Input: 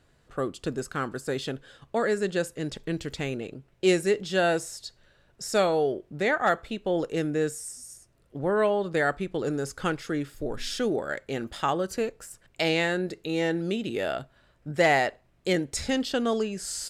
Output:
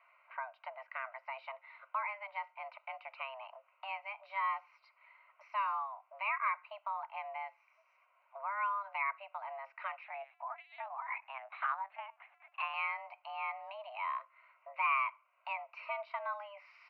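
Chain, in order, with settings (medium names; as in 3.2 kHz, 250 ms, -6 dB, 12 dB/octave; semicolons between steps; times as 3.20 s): compression 2:1, threshold -44 dBFS, peak gain reduction 14.5 dB; static phaser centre 2 kHz, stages 8; 10.04–12.74 s: LPC vocoder at 8 kHz pitch kept; mistuned SSB +400 Hz 280–2400 Hz; trim +6 dB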